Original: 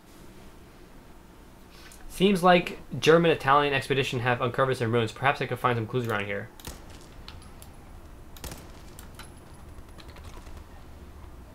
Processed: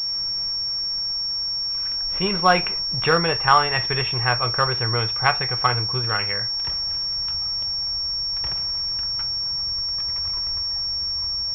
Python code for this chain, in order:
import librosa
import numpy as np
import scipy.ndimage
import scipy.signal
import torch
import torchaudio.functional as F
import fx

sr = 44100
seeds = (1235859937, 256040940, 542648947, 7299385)

y = fx.graphic_eq_10(x, sr, hz=(125, 250, 500, 1000, 2000), db=(4, -12, -4, 4, 3))
y = fx.pwm(y, sr, carrier_hz=5500.0)
y = F.gain(torch.from_numpy(y), 3.0).numpy()